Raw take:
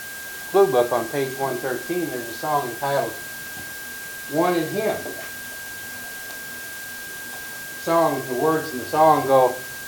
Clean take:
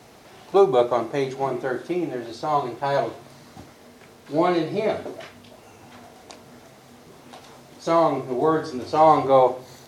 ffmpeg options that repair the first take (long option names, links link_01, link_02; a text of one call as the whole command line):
ffmpeg -i in.wav -af "bandreject=frequency=1600:width=30,afwtdn=0.014" out.wav